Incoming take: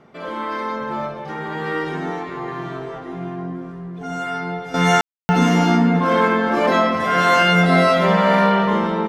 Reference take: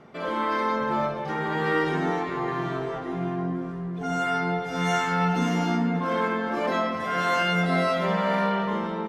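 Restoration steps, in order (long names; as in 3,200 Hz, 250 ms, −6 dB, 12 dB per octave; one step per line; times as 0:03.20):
ambience match 0:05.01–0:05.29
level 0 dB, from 0:04.74 −9 dB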